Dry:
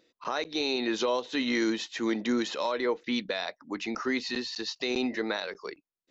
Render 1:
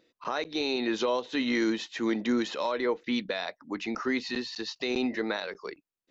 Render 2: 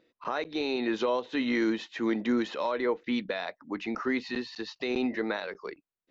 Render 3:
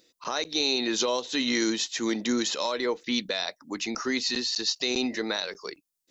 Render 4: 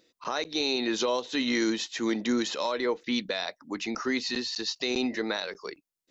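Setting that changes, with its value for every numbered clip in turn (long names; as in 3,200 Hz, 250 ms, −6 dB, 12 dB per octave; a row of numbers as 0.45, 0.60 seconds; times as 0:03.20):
bass and treble, treble: −4, −14, +14, +6 decibels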